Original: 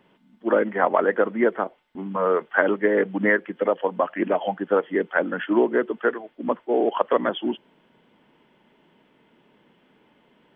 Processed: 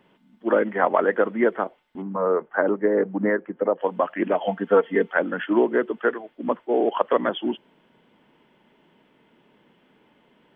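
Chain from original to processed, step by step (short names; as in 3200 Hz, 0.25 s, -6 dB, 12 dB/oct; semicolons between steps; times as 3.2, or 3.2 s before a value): 2.02–3.81 LPF 1200 Hz 12 dB/oct; 4.47–5.11 comb 4.4 ms, depth 79%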